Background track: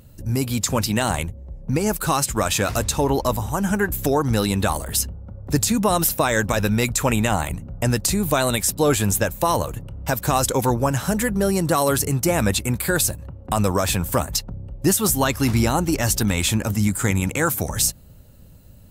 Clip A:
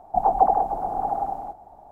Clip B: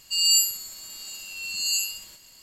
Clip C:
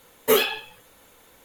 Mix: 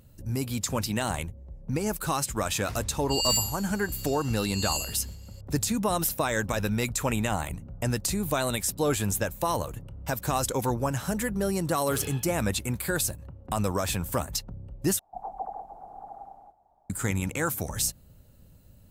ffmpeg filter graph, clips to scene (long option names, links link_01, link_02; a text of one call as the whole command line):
ffmpeg -i bed.wav -i cue0.wav -i cue1.wav -i cue2.wav -filter_complex "[0:a]volume=-7.5dB[link_01];[2:a]asoftclip=type=hard:threshold=-13.5dB[link_02];[3:a]asoftclip=type=tanh:threshold=-21.5dB[link_03];[1:a]equalizer=frequency=320:width_type=o:width=1.2:gain=-4[link_04];[link_01]asplit=2[link_05][link_06];[link_05]atrim=end=14.994[link_07];[link_04]atrim=end=1.91,asetpts=PTS-STARTPTS,volume=-17dB[link_08];[link_06]atrim=start=16.896[link_09];[link_02]atrim=end=2.42,asetpts=PTS-STARTPTS,volume=-6dB,afade=type=in:duration=0.004:curve=hsin,afade=type=out:start_time=2.416:duration=0.004:curve=hsin,adelay=2990[link_10];[link_03]atrim=end=1.44,asetpts=PTS-STARTPTS,volume=-15.5dB,afade=type=in:duration=0.004:curve=hsin,afade=type=out:start_time=1.436:duration=0.004:curve=hsin,adelay=11630[link_11];[link_07][link_08]acrossfade=duration=0.004:curve1=hsin:curve2=hsin[link_12];[link_12][link_09]acrossfade=duration=0.004:curve1=hsin:curve2=hsin[link_13];[link_13][link_10][link_11]amix=inputs=3:normalize=0" out.wav